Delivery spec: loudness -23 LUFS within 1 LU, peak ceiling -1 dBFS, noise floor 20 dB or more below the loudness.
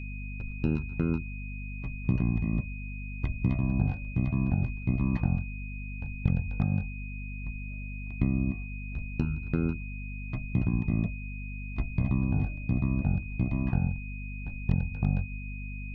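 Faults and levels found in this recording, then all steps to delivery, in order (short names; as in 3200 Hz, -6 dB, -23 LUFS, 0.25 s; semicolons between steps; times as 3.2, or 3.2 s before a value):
hum 50 Hz; harmonics up to 250 Hz; hum level -35 dBFS; steady tone 2500 Hz; tone level -44 dBFS; loudness -31.5 LUFS; peak -11.5 dBFS; loudness target -23.0 LUFS
-> notches 50/100/150/200/250 Hz; notch 2500 Hz, Q 30; gain +8.5 dB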